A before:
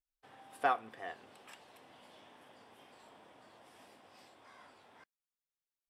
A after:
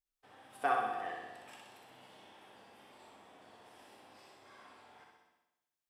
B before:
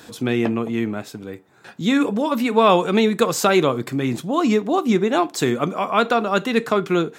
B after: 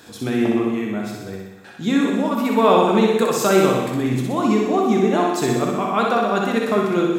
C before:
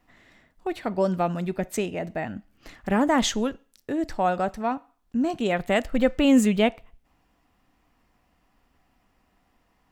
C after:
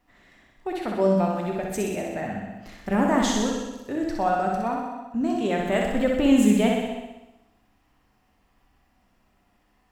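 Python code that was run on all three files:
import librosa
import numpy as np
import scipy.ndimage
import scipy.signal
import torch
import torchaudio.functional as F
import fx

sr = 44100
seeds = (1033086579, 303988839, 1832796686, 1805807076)

p1 = fx.dynamic_eq(x, sr, hz=3100.0, q=0.8, threshold_db=-37.0, ratio=4.0, max_db=-4)
p2 = p1 + fx.room_flutter(p1, sr, wall_m=10.7, rt60_s=0.94, dry=0)
p3 = fx.rev_gated(p2, sr, seeds[0], gate_ms=360, shape='falling', drr_db=3.5)
y = F.gain(torch.from_numpy(p3), -2.5).numpy()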